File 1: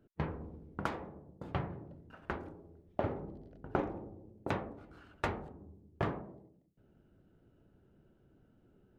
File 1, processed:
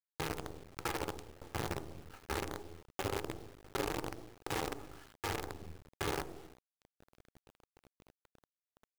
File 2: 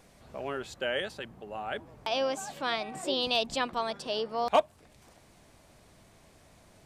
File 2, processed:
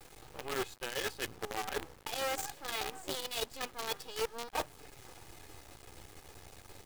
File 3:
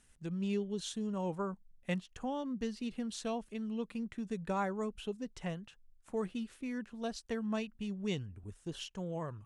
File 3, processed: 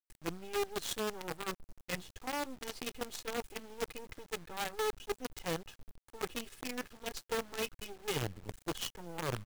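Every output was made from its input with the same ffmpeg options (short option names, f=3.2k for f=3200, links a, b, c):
-af "agate=range=-33dB:threshold=-58dB:ratio=3:detection=peak,aecho=1:1:2.4:0.88,areverse,acompressor=threshold=-42dB:ratio=10,areverse,aeval=exprs='0.0251*(cos(1*acos(clip(val(0)/0.0251,-1,1)))-cos(1*PI/2))+0.000141*(cos(3*acos(clip(val(0)/0.0251,-1,1)))-cos(3*PI/2))+0.00178*(cos(4*acos(clip(val(0)/0.0251,-1,1)))-cos(4*PI/2))+0.000158*(cos(8*acos(clip(val(0)/0.0251,-1,1)))-cos(8*PI/2))':c=same,flanger=delay=6.2:depth=6.6:regen=-31:speed=0.23:shape=sinusoidal,aeval=exprs='val(0)+0.000178*(sin(2*PI*60*n/s)+sin(2*PI*2*60*n/s)/2+sin(2*PI*3*60*n/s)/3+sin(2*PI*4*60*n/s)/4+sin(2*PI*5*60*n/s)/5)':c=same,acrusher=bits=8:dc=4:mix=0:aa=0.000001,volume=10.5dB"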